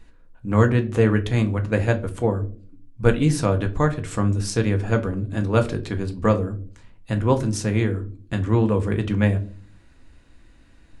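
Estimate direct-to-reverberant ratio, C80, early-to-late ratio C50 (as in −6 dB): 5.5 dB, 21.0 dB, 16.5 dB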